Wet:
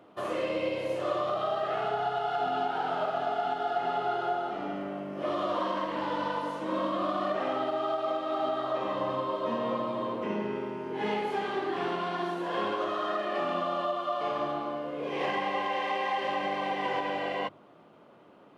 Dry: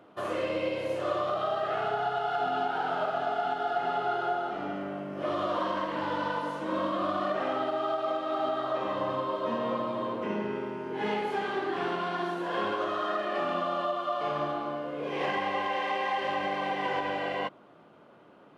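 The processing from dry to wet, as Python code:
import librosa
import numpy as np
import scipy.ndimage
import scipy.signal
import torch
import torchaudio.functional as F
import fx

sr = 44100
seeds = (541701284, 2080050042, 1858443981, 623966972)

y = fx.peak_eq(x, sr, hz=1500.0, db=-4.0, octaves=0.28)
y = fx.hum_notches(y, sr, base_hz=50, count=3)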